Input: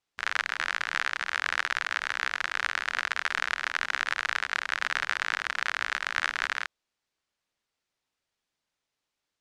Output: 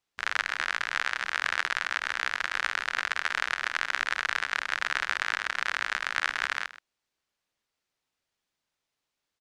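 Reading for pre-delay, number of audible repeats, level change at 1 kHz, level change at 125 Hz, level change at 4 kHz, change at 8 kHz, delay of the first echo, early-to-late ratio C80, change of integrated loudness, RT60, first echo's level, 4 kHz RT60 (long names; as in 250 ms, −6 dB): no reverb audible, 1, 0.0 dB, can't be measured, 0.0 dB, 0.0 dB, 126 ms, no reverb audible, 0.0 dB, no reverb audible, −16.0 dB, no reverb audible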